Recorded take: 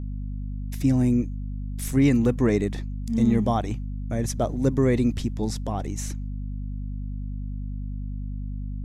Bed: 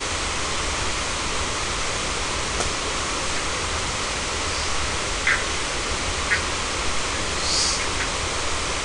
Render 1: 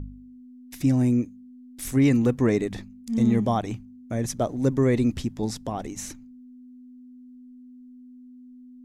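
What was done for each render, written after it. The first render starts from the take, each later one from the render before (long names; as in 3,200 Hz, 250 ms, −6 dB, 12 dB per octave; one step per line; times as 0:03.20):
hum removal 50 Hz, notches 4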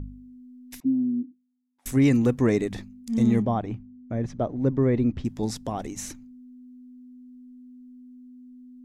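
0:00.80–0:01.86: envelope filter 260–1,100 Hz, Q 10, down, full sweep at −22.5 dBFS
0:03.42–0:05.25: head-to-tape spacing loss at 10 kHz 30 dB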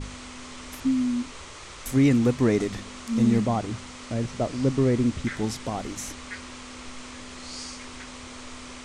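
mix in bed −17 dB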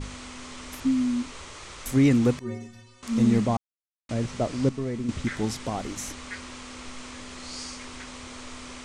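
0:02.39–0:03.03: stiff-string resonator 110 Hz, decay 0.85 s, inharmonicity 0.03
0:03.57–0:04.09: silence
0:04.69–0:05.09: tuned comb filter 220 Hz, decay 0.25 s, mix 70%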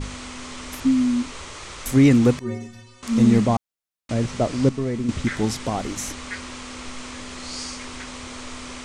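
level +5 dB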